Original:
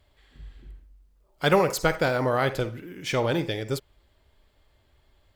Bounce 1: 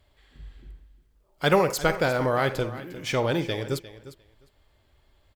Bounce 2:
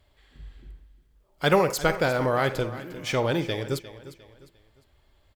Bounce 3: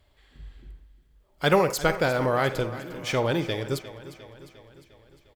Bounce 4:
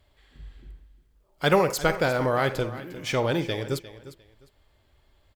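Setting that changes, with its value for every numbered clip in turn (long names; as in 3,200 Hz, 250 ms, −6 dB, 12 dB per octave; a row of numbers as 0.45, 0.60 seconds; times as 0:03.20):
repeating echo, feedback: 15, 36, 58, 23%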